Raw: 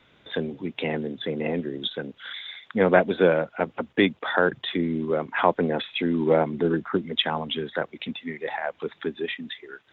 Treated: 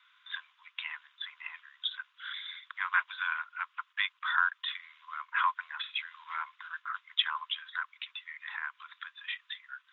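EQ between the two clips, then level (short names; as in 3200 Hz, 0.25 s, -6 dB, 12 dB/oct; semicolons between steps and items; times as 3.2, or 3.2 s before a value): rippled Chebyshev high-pass 1000 Hz, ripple 3 dB; high shelf 2000 Hz -8 dB; +2.0 dB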